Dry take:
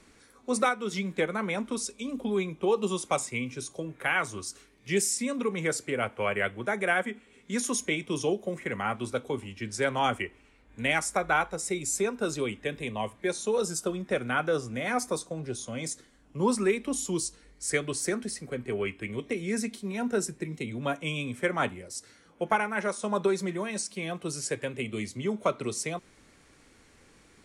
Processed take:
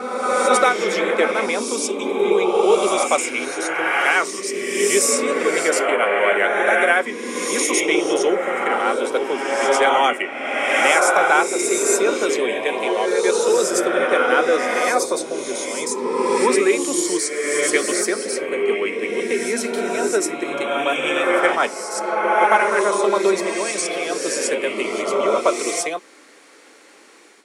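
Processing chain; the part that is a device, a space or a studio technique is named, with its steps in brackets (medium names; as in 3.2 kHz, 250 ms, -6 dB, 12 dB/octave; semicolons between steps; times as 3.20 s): ghost voice (reverse; reverberation RT60 2.4 s, pre-delay 86 ms, DRR -1 dB; reverse; high-pass 320 Hz 24 dB/octave); gate with hold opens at -49 dBFS; trim +9 dB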